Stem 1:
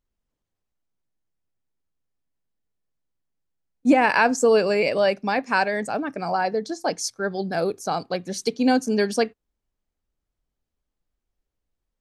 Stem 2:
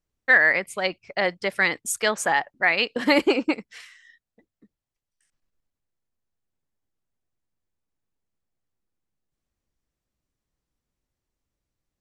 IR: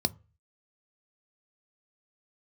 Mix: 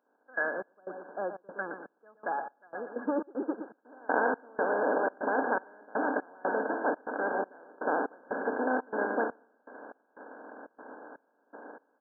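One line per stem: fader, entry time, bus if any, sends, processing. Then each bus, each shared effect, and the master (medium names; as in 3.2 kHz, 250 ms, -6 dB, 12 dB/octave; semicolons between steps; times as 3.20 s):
-13.5 dB, 0.00 s, no send, echo send -7.5 dB, spectral levelling over time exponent 0.2; gate -21 dBFS, range -14 dB; bass shelf 380 Hz -10 dB
0.0 dB, 0.00 s, no send, echo send -17.5 dB, de-esser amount 70%; auto duck -9 dB, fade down 0.75 s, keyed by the first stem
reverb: none
echo: feedback delay 118 ms, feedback 35%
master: high-pass 220 Hz 24 dB/octave; trance gate "...xx..xxxx.xxx" 121 bpm -24 dB; brick-wall FIR low-pass 1.7 kHz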